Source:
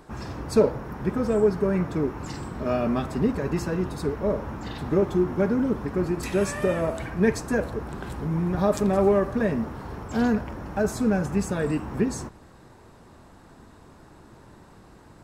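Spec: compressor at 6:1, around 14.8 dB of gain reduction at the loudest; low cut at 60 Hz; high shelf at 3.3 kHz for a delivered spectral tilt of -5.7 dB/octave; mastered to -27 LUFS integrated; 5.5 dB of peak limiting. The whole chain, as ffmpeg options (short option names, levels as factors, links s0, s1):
-af "highpass=60,highshelf=f=3300:g=-3.5,acompressor=threshold=0.0282:ratio=6,volume=2.99,alimiter=limit=0.141:level=0:latency=1"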